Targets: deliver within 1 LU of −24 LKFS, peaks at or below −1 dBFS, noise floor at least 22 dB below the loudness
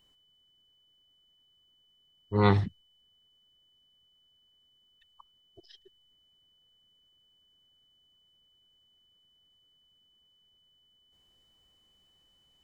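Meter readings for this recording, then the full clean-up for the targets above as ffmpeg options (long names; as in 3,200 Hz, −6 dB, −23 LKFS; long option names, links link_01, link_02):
interfering tone 3,000 Hz; level of the tone −65 dBFS; integrated loudness −27.0 LKFS; sample peak −8.5 dBFS; target loudness −24.0 LKFS
→ -af "bandreject=frequency=3000:width=30"
-af "volume=3dB"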